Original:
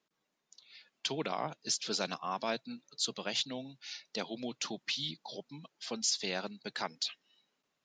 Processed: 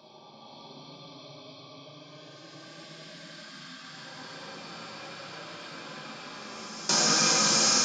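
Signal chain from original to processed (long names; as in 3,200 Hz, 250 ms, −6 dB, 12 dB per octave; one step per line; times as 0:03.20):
every bin's largest magnitude spread in time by 480 ms
extreme stretch with random phases 20×, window 0.05 s, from 0:05.47
parametric band 440 Hz −11 dB 0.26 octaves
noise gate with hold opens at −19 dBFS
automatic gain control gain up to 6 dB
parametric band 1,500 Hz +14.5 dB 0.74 octaves
downward compressor, threshold −24 dBFS, peak gain reduction 8 dB
on a send: echo through a band-pass that steps 184 ms, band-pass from 1,700 Hz, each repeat 0.7 octaves, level −0.5 dB
on the sum: rectangular room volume 270 cubic metres, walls mixed, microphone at 1.2 metres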